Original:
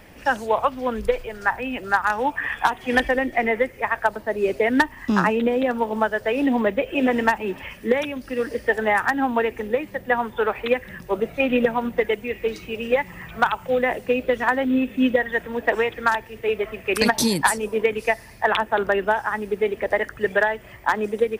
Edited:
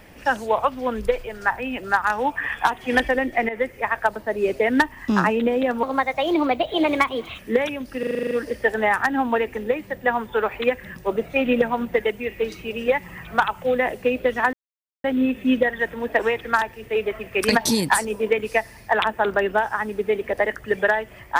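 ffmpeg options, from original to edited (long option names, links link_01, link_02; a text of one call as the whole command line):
ffmpeg -i in.wav -filter_complex "[0:a]asplit=13[link_01][link_02][link_03][link_04][link_05][link_06][link_07][link_08][link_09][link_10][link_11][link_12][link_13];[link_01]atrim=end=3.49,asetpts=PTS-STARTPTS,afade=type=out:start_time=3.486:duration=0.004:curve=hsin:silence=0.211349[link_14];[link_02]atrim=start=3.49:end=5.834,asetpts=PTS-STARTPTS,afade=type=in:duration=0.25:curve=qsin:silence=0.211349[link_15];[link_03]atrim=start=5.83:end=7.75,asetpts=PTS-STARTPTS,asetrate=54243,aresample=44100,atrim=end_sample=68839,asetpts=PTS-STARTPTS[link_16];[link_04]atrim=start=7.746:end=8.392[link_17];[link_05]atrim=start=8.348:end=8.392[link_18];[link_06]atrim=start=8.348:end=8.392[link_19];[link_07]atrim=start=8.348:end=8.392[link_20];[link_08]atrim=start=8.348:end=8.392[link_21];[link_09]atrim=start=8.348:end=8.392[link_22];[link_10]atrim=start=8.348:end=8.392[link_23];[link_11]atrim=start=8.348:end=8.392[link_24];[link_12]atrim=start=8.348:end=14.57,asetpts=PTS-STARTPTS,afade=type=out:start_time=6.218:duration=0.004:curve=hsin,apad=pad_dur=0.51[link_25];[link_13]atrim=start=14.57,asetpts=PTS-STARTPTS,afade=type=in:duration=0.004:curve=hsin[link_26];[link_14][link_15]concat=n=2:v=0:a=1[link_27];[link_27][link_16]acrossfade=duration=0.004:curve1=hsin:curve2=hsin[link_28];[link_28][link_17]acrossfade=duration=0.004:curve1=hsin:curve2=hsin[link_29];[link_29][link_18]acrossfade=duration=0.004:curve1=hsin:curve2=hsin[link_30];[link_30][link_19]acrossfade=duration=0.004:curve1=hsin:curve2=hsin[link_31];[link_31][link_20]acrossfade=duration=0.004:curve1=hsin:curve2=hsin[link_32];[link_32][link_21]acrossfade=duration=0.004:curve1=hsin:curve2=hsin[link_33];[link_33][link_22]acrossfade=duration=0.004:curve1=hsin:curve2=hsin[link_34];[link_34][link_23]acrossfade=duration=0.004:curve1=hsin:curve2=hsin[link_35];[link_35][link_24]acrossfade=duration=0.004:curve1=hsin:curve2=hsin[link_36];[link_25][link_26]concat=n=2:v=0:a=1[link_37];[link_36][link_37]acrossfade=duration=0.004:curve1=hsin:curve2=hsin" out.wav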